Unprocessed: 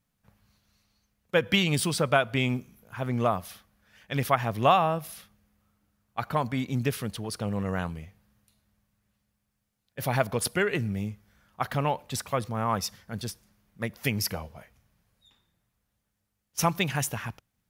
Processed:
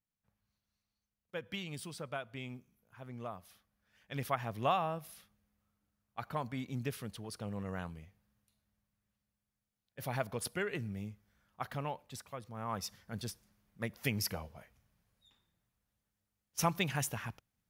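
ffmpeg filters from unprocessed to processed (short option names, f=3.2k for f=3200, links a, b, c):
-af "volume=0.5dB,afade=t=in:st=3.39:d=0.85:silence=0.421697,afade=t=out:st=11.63:d=0.79:silence=0.446684,afade=t=in:st=12.42:d=0.7:silence=0.281838"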